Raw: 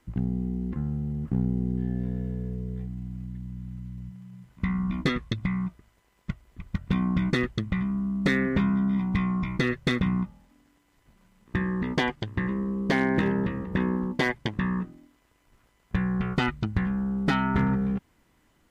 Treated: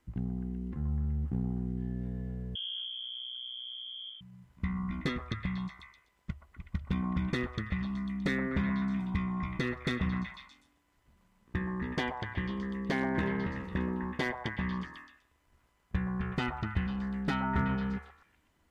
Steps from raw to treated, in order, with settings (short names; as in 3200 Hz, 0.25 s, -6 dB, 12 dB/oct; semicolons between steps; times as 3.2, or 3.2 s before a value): bell 73 Hz +13.5 dB 0.22 oct; delay with a stepping band-pass 0.124 s, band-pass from 860 Hz, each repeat 0.7 oct, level -1.5 dB; 2.55–4.21 inverted band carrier 3300 Hz; gain -7.5 dB